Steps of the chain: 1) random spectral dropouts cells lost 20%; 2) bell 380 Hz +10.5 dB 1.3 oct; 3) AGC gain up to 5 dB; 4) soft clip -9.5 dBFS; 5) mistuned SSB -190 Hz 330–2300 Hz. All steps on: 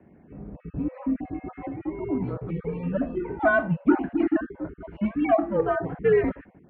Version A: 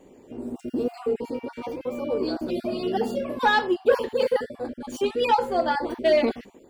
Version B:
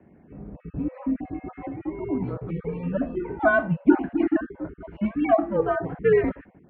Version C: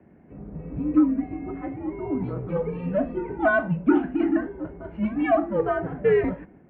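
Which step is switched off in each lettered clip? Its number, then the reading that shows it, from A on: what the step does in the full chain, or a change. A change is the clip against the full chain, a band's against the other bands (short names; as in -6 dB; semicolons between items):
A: 5, 125 Hz band -13.0 dB; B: 4, distortion -19 dB; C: 1, 250 Hz band +1.5 dB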